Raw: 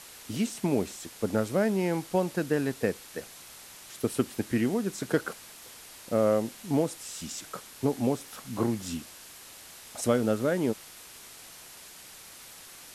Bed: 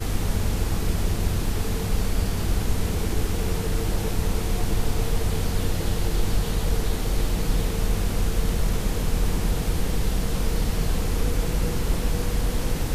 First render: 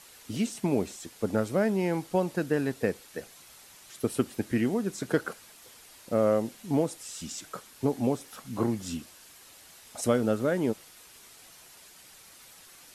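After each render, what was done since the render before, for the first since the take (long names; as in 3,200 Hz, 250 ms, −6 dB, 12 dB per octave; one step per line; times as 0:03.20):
broadband denoise 6 dB, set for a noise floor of −49 dBFS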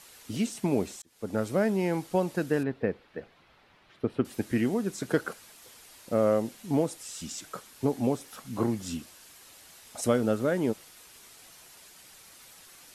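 0:01.02–0:01.48: fade in
0:02.63–0:04.25: high-frequency loss of the air 370 metres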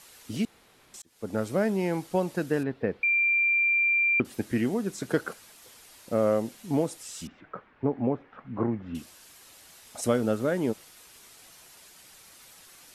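0:00.45–0:00.94: fill with room tone
0:03.03–0:04.20: beep over 2,370 Hz −20.5 dBFS
0:07.27–0:08.95: low-pass filter 2,100 Hz 24 dB per octave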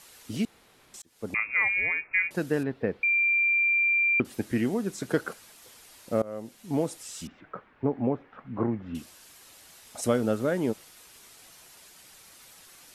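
0:01.34–0:02.31: voice inversion scrambler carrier 2,600 Hz
0:06.22–0:06.88: fade in, from −22 dB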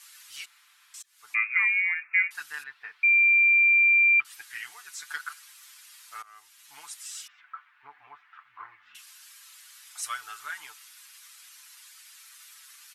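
inverse Chebyshev high-pass filter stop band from 580 Hz, stop band 40 dB
comb filter 6.8 ms, depth 68%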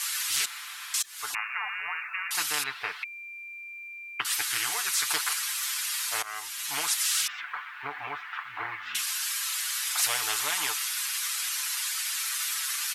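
every bin compressed towards the loudest bin 10 to 1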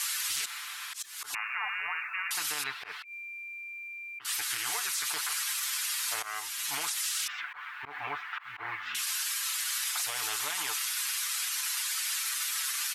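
brickwall limiter −22.5 dBFS, peak gain reduction 9.5 dB
volume swells 107 ms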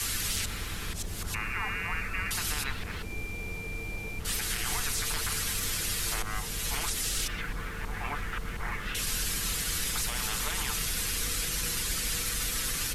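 mix in bed −14 dB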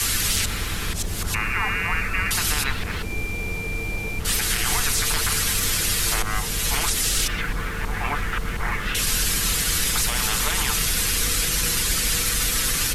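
level +9 dB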